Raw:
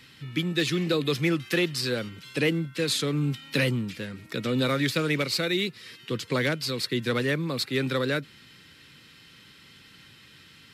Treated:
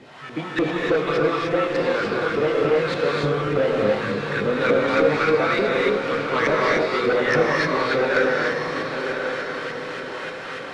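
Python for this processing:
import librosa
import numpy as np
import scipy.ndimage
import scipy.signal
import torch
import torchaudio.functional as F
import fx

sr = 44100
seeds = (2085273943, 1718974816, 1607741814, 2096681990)

p1 = fx.delta_mod(x, sr, bps=64000, step_db=-39.0)
p2 = scipy.signal.sosfilt(scipy.signal.butter(2, 9600.0, 'lowpass', fs=sr, output='sos'), p1)
p3 = fx.peak_eq(p2, sr, hz=330.0, db=-2.5, octaves=0.77)
p4 = fx.rider(p3, sr, range_db=4, speed_s=0.5)
p5 = p3 + (p4 * librosa.db_to_amplitude(-3.0))
p6 = fx.chorus_voices(p5, sr, voices=4, hz=0.54, base_ms=20, depth_ms=1.1, mix_pct=35)
p7 = fx.filter_lfo_bandpass(p6, sr, shape='saw_up', hz=3.4, low_hz=350.0, high_hz=1800.0, q=2.6)
p8 = fx.fold_sine(p7, sr, drive_db=16, ceiling_db=-10.0)
p9 = fx.echo_diffused(p8, sr, ms=1054, feedback_pct=46, wet_db=-6)
p10 = fx.rev_gated(p9, sr, seeds[0], gate_ms=330, shape='rising', drr_db=-2.5)
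y = p10 * librosa.db_to_amplitude(-7.0)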